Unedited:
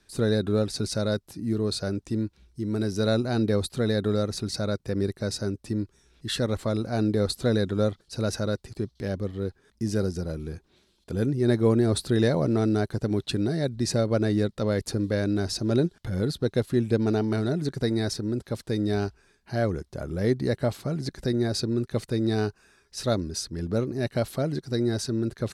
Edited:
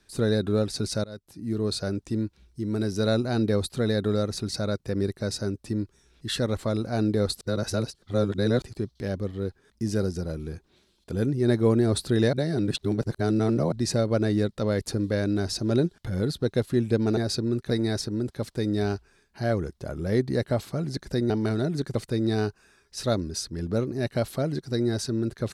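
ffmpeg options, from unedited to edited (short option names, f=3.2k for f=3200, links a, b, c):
-filter_complex "[0:a]asplit=10[a][b][c][d][e][f][g][h][i][j];[a]atrim=end=1.04,asetpts=PTS-STARTPTS,afade=t=out:st=1.036:d=0.004:c=hsin:silence=0.0749894[k];[b]atrim=start=1.04:end=7.412,asetpts=PTS-STARTPTS,afade=t=in:d=0.62:silence=0.0749894[l];[c]atrim=start=7.408:end=8.622,asetpts=PTS-STARTPTS,areverse[m];[d]atrim=start=8.618:end=12.332[n];[e]atrim=start=12.328:end=13.722,asetpts=PTS-STARTPTS,areverse[o];[f]atrim=start=13.718:end=17.172[p];[g]atrim=start=21.418:end=21.952[q];[h]atrim=start=17.818:end=21.422[r];[i]atrim=start=17.168:end=17.822[s];[j]atrim=start=21.948[t];[k][l]concat=n=2:v=0:a=1[u];[u][m]acrossfade=d=0.004:c1=hsin:c2=hsin[v];[v][n]acrossfade=d=0.004:c1=hsin:c2=hsin[w];[w][o]acrossfade=d=0.004:c1=hsin:c2=hsin[x];[x][p]acrossfade=d=0.004:c1=hsin:c2=hsin[y];[y][q]acrossfade=d=0.004:c1=hsin:c2=hsin[z];[z][r]acrossfade=d=0.004:c1=hsin:c2=hsin[aa];[aa][s]acrossfade=d=0.004:c1=hsin:c2=hsin[ab];[ab][t]acrossfade=d=0.004:c1=hsin:c2=hsin"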